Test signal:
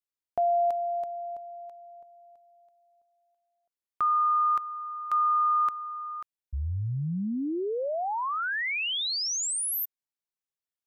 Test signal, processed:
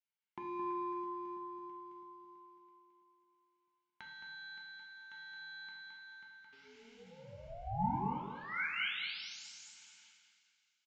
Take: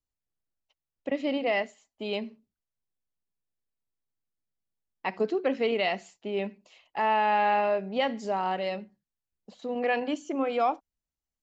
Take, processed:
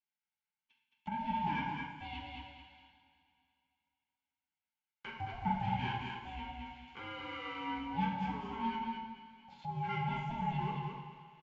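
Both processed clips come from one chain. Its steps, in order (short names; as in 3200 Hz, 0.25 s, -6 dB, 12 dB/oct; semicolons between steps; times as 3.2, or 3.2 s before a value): block floating point 5-bit; low shelf 460 Hz -6.5 dB; in parallel at -2.5 dB: compressor, threshold -37 dBFS; on the sum: soft clip -23.5 dBFS; vowel filter e; ring modulator 340 Hz; on a send: feedback echo 0.218 s, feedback 24%, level -4 dB; on the sum: two-slope reverb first 0.78 s, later 2.6 s, from -18 dB, DRR -2 dB; downsampling 16000 Hz; mismatched tape noise reduction encoder only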